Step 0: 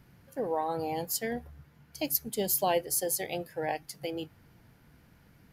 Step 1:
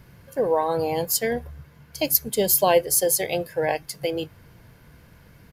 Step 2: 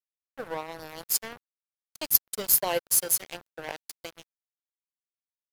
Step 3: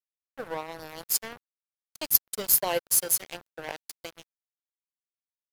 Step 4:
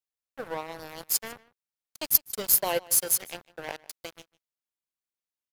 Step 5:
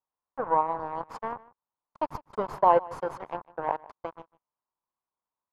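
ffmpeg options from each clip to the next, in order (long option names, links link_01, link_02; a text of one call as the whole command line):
ffmpeg -i in.wav -af "aecho=1:1:1.9:0.33,volume=8.5dB" out.wav
ffmpeg -i in.wav -af "highshelf=frequency=2700:gain=8,aeval=exprs='sgn(val(0))*max(abs(val(0))-0.0841,0)':channel_layout=same,aeval=exprs='1.78*(cos(1*acos(clip(val(0)/1.78,-1,1)))-cos(1*PI/2))+0.126*(cos(2*acos(clip(val(0)/1.78,-1,1)))-cos(2*PI/2))':channel_layout=same,volume=-7dB" out.wav
ffmpeg -i in.wav -af anull out.wav
ffmpeg -i in.wav -filter_complex "[0:a]asplit=2[link_01][link_02];[link_02]adelay=151.6,volume=-21dB,highshelf=frequency=4000:gain=-3.41[link_03];[link_01][link_03]amix=inputs=2:normalize=0" out.wav
ffmpeg -i in.wav -af "lowpass=frequency=1000:width_type=q:width=4.9,volume=3dB" out.wav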